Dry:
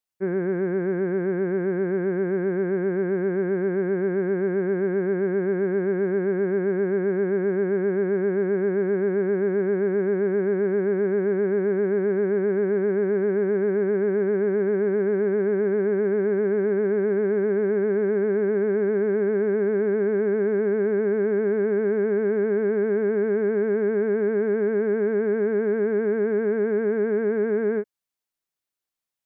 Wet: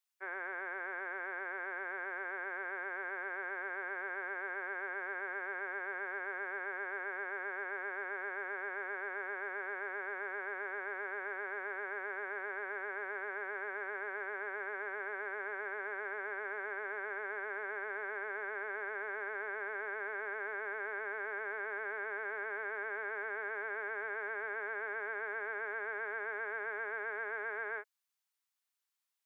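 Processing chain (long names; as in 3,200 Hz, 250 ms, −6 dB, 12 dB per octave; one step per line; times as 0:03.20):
high-pass filter 840 Hz 24 dB per octave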